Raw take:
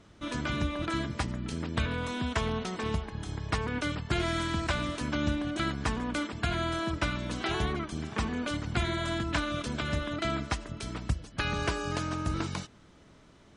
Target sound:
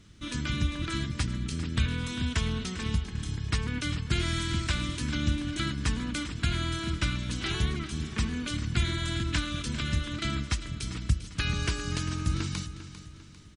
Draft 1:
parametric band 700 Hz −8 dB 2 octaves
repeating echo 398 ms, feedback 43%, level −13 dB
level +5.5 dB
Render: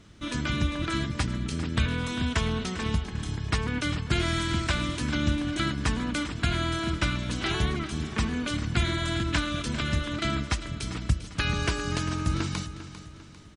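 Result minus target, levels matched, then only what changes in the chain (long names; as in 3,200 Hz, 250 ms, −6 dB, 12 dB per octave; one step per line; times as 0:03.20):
500 Hz band +4.5 dB
change: parametric band 700 Hz −18 dB 2 octaves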